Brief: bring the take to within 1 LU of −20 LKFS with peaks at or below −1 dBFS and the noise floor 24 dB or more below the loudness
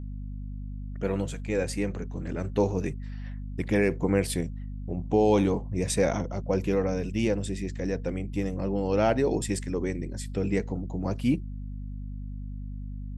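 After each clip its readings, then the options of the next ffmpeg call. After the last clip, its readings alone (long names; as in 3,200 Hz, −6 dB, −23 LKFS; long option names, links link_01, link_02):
mains hum 50 Hz; hum harmonics up to 250 Hz; level of the hum −34 dBFS; integrated loudness −28.5 LKFS; sample peak −10.5 dBFS; target loudness −20.0 LKFS
→ -af "bandreject=frequency=50:width_type=h:width=4,bandreject=frequency=100:width_type=h:width=4,bandreject=frequency=150:width_type=h:width=4,bandreject=frequency=200:width_type=h:width=4,bandreject=frequency=250:width_type=h:width=4"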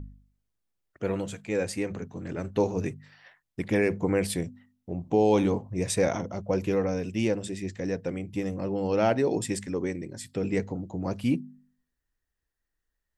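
mains hum none found; integrated loudness −29.0 LKFS; sample peak −11.0 dBFS; target loudness −20.0 LKFS
→ -af "volume=9dB"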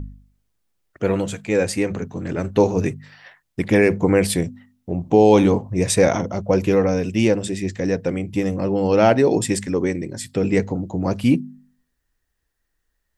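integrated loudness −20.0 LKFS; sample peak −2.0 dBFS; background noise floor −74 dBFS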